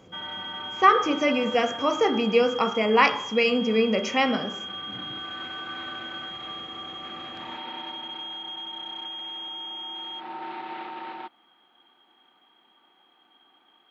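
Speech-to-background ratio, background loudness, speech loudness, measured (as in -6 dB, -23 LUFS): 11.5 dB, -34.0 LUFS, -22.5 LUFS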